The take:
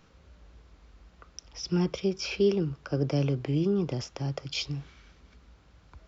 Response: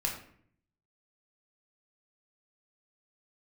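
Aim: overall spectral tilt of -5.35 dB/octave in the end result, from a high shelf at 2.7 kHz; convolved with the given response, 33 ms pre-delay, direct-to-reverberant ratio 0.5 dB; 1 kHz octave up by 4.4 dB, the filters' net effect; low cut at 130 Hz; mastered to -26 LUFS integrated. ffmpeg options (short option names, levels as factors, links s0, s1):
-filter_complex "[0:a]highpass=130,equalizer=f=1000:t=o:g=5.5,highshelf=f=2700:g=4,asplit=2[s0][s1];[1:a]atrim=start_sample=2205,adelay=33[s2];[s1][s2]afir=irnorm=-1:irlink=0,volume=0.531[s3];[s0][s3]amix=inputs=2:normalize=0,volume=1.12"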